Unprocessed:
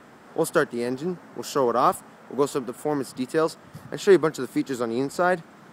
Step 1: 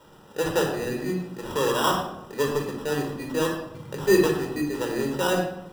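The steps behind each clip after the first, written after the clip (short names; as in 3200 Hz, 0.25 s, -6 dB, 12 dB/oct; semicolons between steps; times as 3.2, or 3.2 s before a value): high shelf 10000 Hz +6 dB; sample-rate reducer 2200 Hz, jitter 0%; reverb RT60 0.85 s, pre-delay 21 ms, DRR 1 dB; gain -6.5 dB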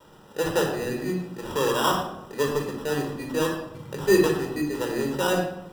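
vibrato 0.48 Hz 11 cents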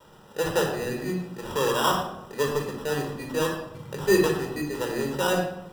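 bell 300 Hz -4.5 dB 0.49 oct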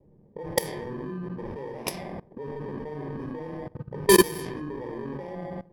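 FFT order left unsorted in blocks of 32 samples; level quantiser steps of 20 dB; low-pass opened by the level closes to 360 Hz, open at -26.5 dBFS; gain +7 dB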